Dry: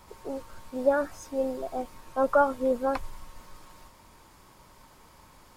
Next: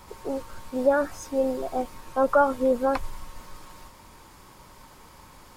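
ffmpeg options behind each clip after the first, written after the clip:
-filter_complex "[0:a]bandreject=f=650:w=16,asplit=2[s0][s1];[s1]alimiter=limit=0.0841:level=0:latency=1:release=89,volume=0.794[s2];[s0][s2]amix=inputs=2:normalize=0"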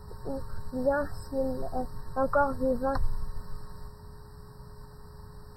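-af "lowshelf=f=210:t=q:w=1.5:g=11.5,aeval=exprs='val(0)+0.00282*sin(2*PI*420*n/s)':c=same,afftfilt=real='re*eq(mod(floor(b*sr/1024/1900),2),0)':imag='im*eq(mod(floor(b*sr/1024/1900),2),0)':win_size=1024:overlap=0.75,volume=0.596"

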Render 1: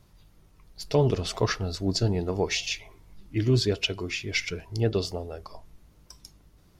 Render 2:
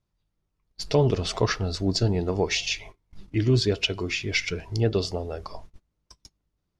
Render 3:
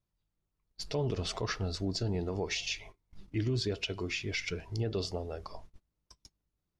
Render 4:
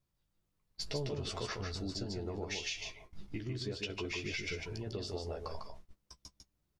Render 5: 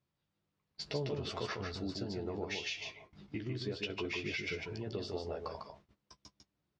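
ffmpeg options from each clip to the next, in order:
-filter_complex "[0:a]lowpass=7900,agate=range=0.0501:threshold=0.00501:ratio=16:detection=peak,asplit=2[s0][s1];[s1]acompressor=threshold=0.02:ratio=6,volume=0.944[s2];[s0][s2]amix=inputs=2:normalize=0"
-af "alimiter=limit=0.141:level=0:latency=1:release=55,volume=0.473"
-filter_complex "[0:a]acompressor=threshold=0.0112:ratio=6,asplit=2[s0][s1];[s1]adelay=14,volume=0.501[s2];[s0][s2]amix=inputs=2:normalize=0,aecho=1:1:150:0.596,volume=1.19"
-af "highpass=110,lowpass=4300,volume=1.19"

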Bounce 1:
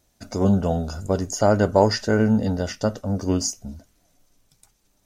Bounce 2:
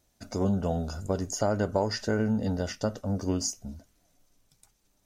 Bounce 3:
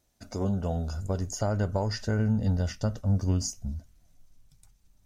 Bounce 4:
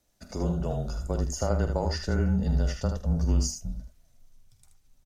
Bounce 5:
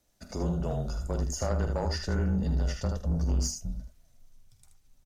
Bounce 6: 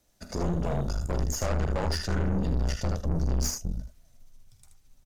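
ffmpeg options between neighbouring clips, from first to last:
-af "acompressor=threshold=0.112:ratio=3,volume=0.596"
-af "asubboost=boost=6:cutoff=150,volume=0.75"
-af "afreqshift=-27,aecho=1:1:48|78:0.251|0.473"
-af "asoftclip=type=tanh:threshold=0.0891"
-af "aeval=exprs='(tanh(39.8*val(0)+0.75)-tanh(0.75))/39.8':c=same,volume=2.37"

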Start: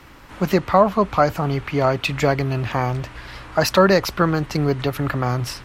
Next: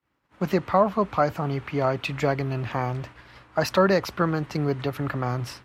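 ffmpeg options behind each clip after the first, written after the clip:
-af "agate=range=0.0224:threshold=0.0316:ratio=3:detection=peak,highpass=79,highshelf=f=3900:g=-6,volume=0.562"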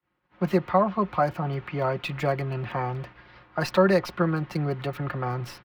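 -filter_complex "[0:a]aecho=1:1:5.6:0.51,acrossover=split=330|770|4700[s0][s1][s2][s3];[s3]acrusher=bits=5:dc=4:mix=0:aa=0.000001[s4];[s0][s1][s2][s4]amix=inputs=4:normalize=0,volume=0.75"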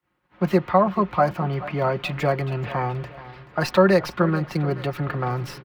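-af "aecho=1:1:430|860|1290|1720:0.141|0.0607|0.0261|0.0112,volume=1.5"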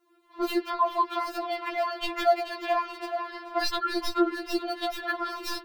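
-filter_complex "[0:a]asplit=2[s0][s1];[s1]alimiter=limit=0.178:level=0:latency=1:release=33,volume=1.41[s2];[s0][s2]amix=inputs=2:normalize=0,acrossover=split=110|2000[s3][s4][s5];[s3]acompressor=threshold=0.0158:ratio=4[s6];[s4]acompressor=threshold=0.0501:ratio=4[s7];[s5]acompressor=threshold=0.0224:ratio=4[s8];[s6][s7][s8]amix=inputs=3:normalize=0,afftfilt=real='re*4*eq(mod(b,16),0)':imag='im*4*eq(mod(b,16),0)':win_size=2048:overlap=0.75,volume=1.41"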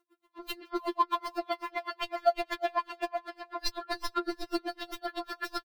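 -filter_complex "[0:a]asplit=2[s0][s1];[s1]aecho=0:1:328|656|984|1312:0.562|0.174|0.054|0.0168[s2];[s0][s2]amix=inputs=2:normalize=0,aeval=exprs='val(0)*pow(10,-31*(0.5-0.5*cos(2*PI*7.9*n/s))/20)':c=same"

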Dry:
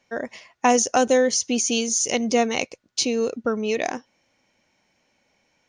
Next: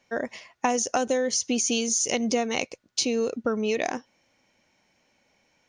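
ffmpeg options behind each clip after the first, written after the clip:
-af "acompressor=threshold=0.0891:ratio=6"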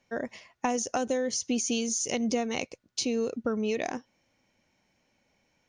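-af "lowshelf=f=250:g=7,volume=0.531"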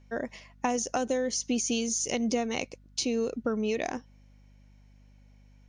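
-af "aeval=exprs='val(0)+0.00178*(sin(2*PI*50*n/s)+sin(2*PI*2*50*n/s)/2+sin(2*PI*3*50*n/s)/3+sin(2*PI*4*50*n/s)/4+sin(2*PI*5*50*n/s)/5)':c=same"

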